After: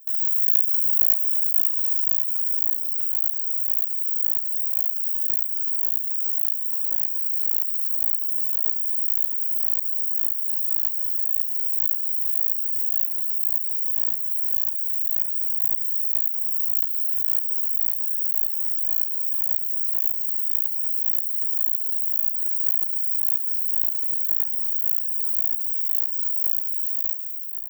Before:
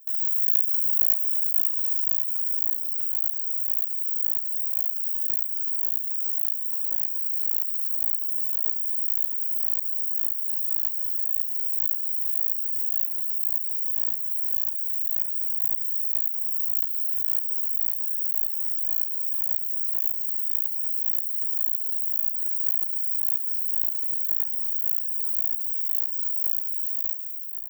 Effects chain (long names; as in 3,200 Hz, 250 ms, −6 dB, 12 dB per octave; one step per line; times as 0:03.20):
parametric band 8,700 Hz −9 dB 0.26 octaves
feedback echo with a low-pass in the loop 216 ms, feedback 73%, level −14.5 dB
level +2.5 dB